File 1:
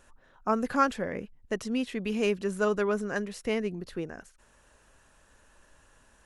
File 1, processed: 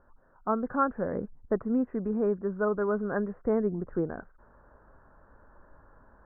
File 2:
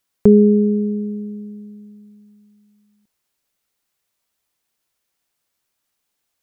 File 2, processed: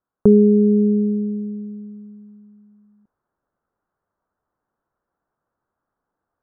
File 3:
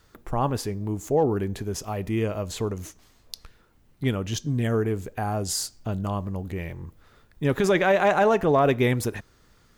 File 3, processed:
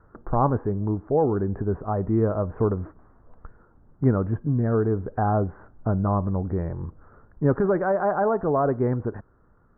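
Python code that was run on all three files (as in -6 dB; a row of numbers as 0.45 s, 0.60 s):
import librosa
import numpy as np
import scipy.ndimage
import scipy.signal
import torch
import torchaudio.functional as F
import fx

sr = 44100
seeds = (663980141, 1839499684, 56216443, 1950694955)

y = scipy.signal.sosfilt(scipy.signal.butter(8, 1500.0, 'lowpass', fs=sr, output='sos'), x)
y = fx.rider(y, sr, range_db=4, speed_s=0.5)
y = y * librosa.db_to_amplitude(1.5)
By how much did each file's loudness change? +0.5 LU, -0.5 LU, +0.5 LU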